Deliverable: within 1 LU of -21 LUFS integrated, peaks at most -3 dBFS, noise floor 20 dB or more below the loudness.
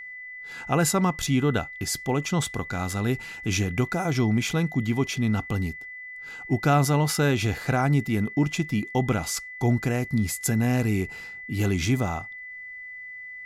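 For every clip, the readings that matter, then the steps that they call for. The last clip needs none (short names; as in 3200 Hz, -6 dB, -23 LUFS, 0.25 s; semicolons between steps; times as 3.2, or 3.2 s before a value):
steady tone 2000 Hz; tone level -37 dBFS; loudness -25.5 LUFS; peak -9.5 dBFS; loudness target -21.0 LUFS
-> notch 2000 Hz, Q 30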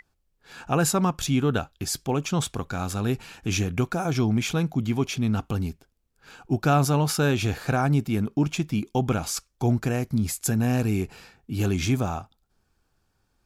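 steady tone none; loudness -25.5 LUFS; peak -9.5 dBFS; loudness target -21.0 LUFS
-> gain +4.5 dB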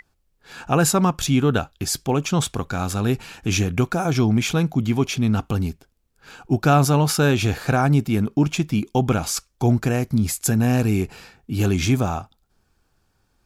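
loudness -21.0 LUFS; peak -5.0 dBFS; noise floor -67 dBFS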